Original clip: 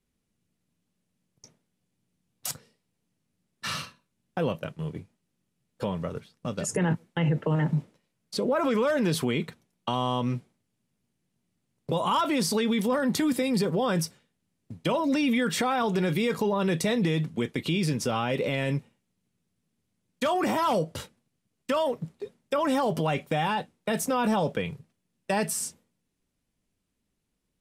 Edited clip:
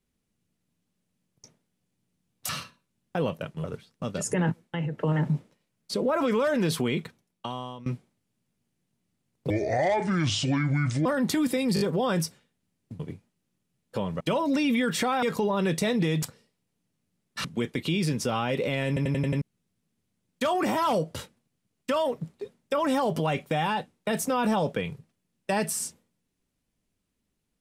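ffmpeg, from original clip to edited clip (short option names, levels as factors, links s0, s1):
-filter_complex "[0:a]asplit=21[s0][s1][s2][s3][s4][s5][s6][s7][s8][s9][s10][s11][s12][s13][s14][s15][s16][s17][s18][s19][s20];[s0]atrim=end=2.492[s21];[s1]atrim=start=3.708:end=4.862[s22];[s2]atrim=start=6.068:end=7.41,asetpts=PTS-STARTPTS,afade=t=out:st=0.832:d=0.51:silence=0.334965[s23];[s3]atrim=start=7.41:end=10.29,asetpts=PTS-STARTPTS,afade=t=in:d=0.004:c=hsin:silence=0.334965,afade=t=out:st=2.03:d=0.85:silence=0.105925[s24];[s4]atrim=start=10.29:end=11.934,asetpts=PTS-STARTPTS,afade=t=in:d=0.004:c=hsin:silence=0.105925[s25];[s5]atrim=start=11.93:end=12.91,asetpts=PTS-STARTPTS,asetrate=27783,aresample=44100[s26];[s6]atrim=start=12.906:end=13.622[s27];[s7]atrim=start=13.598:end=13.622[s28];[s8]atrim=start=13.598:end=13.622[s29];[s9]atrim=start=13.598:end=14.792[s30];[s10]atrim=start=4.858:end=6.072[s31];[s11]atrim=start=14.788:end=15.812[s32];[s12]atrim=start=16.248:end=17.252[s33];[s13]atrim=start=2.488:end=3.712[s34];[s14]atrim=start=17.248:end=18.772[s35];[s15]atrim=start=18.678:end=18.772[s36];[s16]atrim=start=18.678:end=18.772[s37];[s17]atrim=start=18.678:end=18.772[s38];[s18]atrim=start=18.678:end=18.772[s39];[s19]atrim=start=18.678:end=18.772[s40];[s20]atrim=start=19.218[s41];[s21][s22]acrossfade=d=0.004:c1=hsin:c2=hsin[s42];[s23][s24][s25]concat=n=3:v=0:a=1[s43];[s42][s43]acrossfade=d=0.004:c1=hsin:c2=hsin[s44];[s44][s26]acrossfade=d=0.004:c1=hsin:c2=hsin[s45];[s45][s27]acrossfade=d=0.004:c1=hsin:c2=hsin[s46];[s46][s28]acrossfade=d=0.004:c1=hsin:c2=hsin[s47];[s47][s29]acrossfade=d=0.004:c1=hsin:c2=hsin[s48];[s48][s30]acrossfade=d=0.004:c1=hsin:c2=hsin[s49];[s49][s31]acrossfade=d=0.004:c1=hsin:c2=hsin[s50];[s50][s32]acrossfade=d=0.004:c1=hsin:c2=hsin[s51];[s51][s33]acrossfade=d=0.004:c1=hsin:c2=hsin[s52];[s52][s34]acrossfade=d=0.004:c1=hsin:c2=hsin[s53];[s53][s35]acrossfade=d=0.004:c1=hsin:c2=hsin[s54];[s54][s36]acrossfade=d=0.004:c1=hsin:c2=hsin[s55];[s55][s37]acrossfade=d=0.004:c1=hsin:c2=hsin[s56];[s56][s38]acrossfade=d=0.004:c1=hsin:c2=hsin[s57];[s57][s39]acrossfade=d=0.004:c1=hsin:c2=hsin[s58];[s58][s40]acrossfade=d=0.004:c1=hsin:c2=hsin[s59];[s59][s41]acrossfade=d=0.004:c1=hsin:c2=hsin"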